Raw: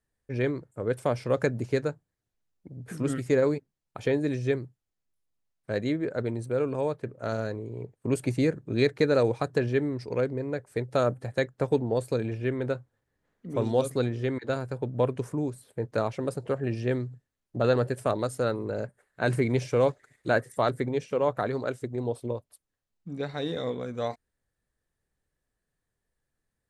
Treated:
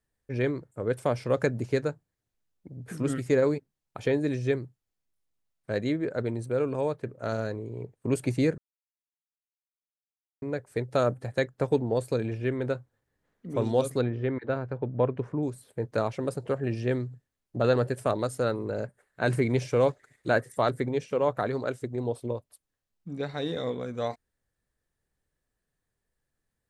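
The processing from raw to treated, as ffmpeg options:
-filter_complex "[0:a]asettb=1/sr,asplit=3[s0][s1][s2];[s0]atrim=end=14.014[s3];[s1]atrim=start=14.01:end=15.43,asetpts=PTS-STARTPTS,afade=t=in:d=0.004:c=qsin,afade=t=out:st=1.416:d=0.004:c=qsin,lowpass=2300[s4];[s2]atrim=start=15.426[s5];[s3][s4]acrossfade=d=0.004:c1=hsin:c2=qsin[s6];[s6][s5]acrossfade=d=0.004:c1=qsin:c2=hsin,asplit=3[s7][s8][s9];[s7]atrim=end=8.58,asetpts=PTS-STARTPTS,afade=t=out:st=8.576:d=0.004:c=hsin[s10];[s8]atrim=start=8.58:end=10.42,asetpts=PTS-STARTPTS,volume=0[s11];[s9]atrim=start=10.42,asetpts=PTS-STARTPTS,afade=t=in:d=0.004:c=hsin[s12];[s10][s11][s12]concat=n=3:v=0:a=1"

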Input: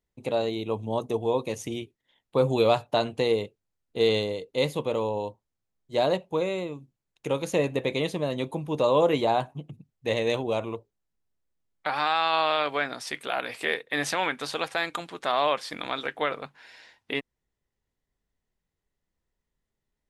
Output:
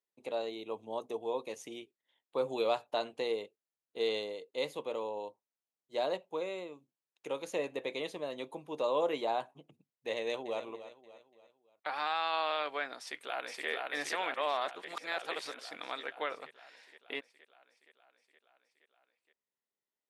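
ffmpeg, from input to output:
-filter_complex "[0:a]asplit=2[s0][s1];[s1]afade=t=in:st=10.16:d=0.01,afade=t=out:st=10.63:d=0.01,aecho=0:1:290|580|870|1160:0.223872|0.100742|0.0453341|0.0204003[s2];[s0][s2]amix=inputs=2:normalize=0,asplit=2[s3][s4];[s4]afade=t=in:st=12.99:d=0.01,afade=t=out:st=13.68:d=0.01,aecho=0:1:470|940|1410|1880|2350|2820|3290|3760|4230|4700|5170|5640:0.794328|0.55603|0.389221|0.272455|0.190718|0.133503|0.0934519|0.0654163|0.0457914|0.032054|0.0224378|0.0157065[s5];[s3][s5]amix=inputs=2:normalize=0,asplit=3[s6][s7][s8];[s6]atrim=end=14.342[s9];[s7]atrim=start=14.338:end=15.592,asetpts=PTS-STARTPTS,areverse[s10];[s8]atrim=start=15.588[s11];[s9][s10]acrossfade=d=0.004:c1=hsin:c2=hsin[s12];[s12][s11]acrossfade=d=0.004:c1=hsin:c2=hsin,highpass=350,highshelf=f=9500:g=-4.5,volume=0.376"

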